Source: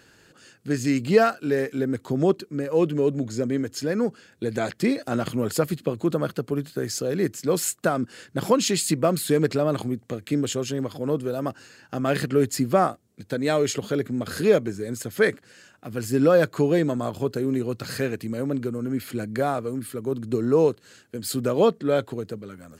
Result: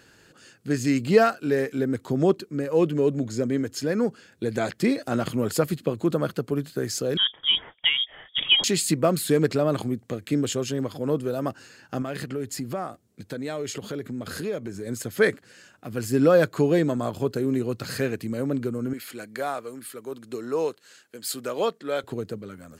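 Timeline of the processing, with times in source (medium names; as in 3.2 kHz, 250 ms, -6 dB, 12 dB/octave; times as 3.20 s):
7.17–8.64 s: frequency inversion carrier 3.5 kHz
12.02–14.87 s: compression 2.5:1, threshold -31 dBFS
18.93–22.04 s: high-pass 880 Hz 6 dB/octave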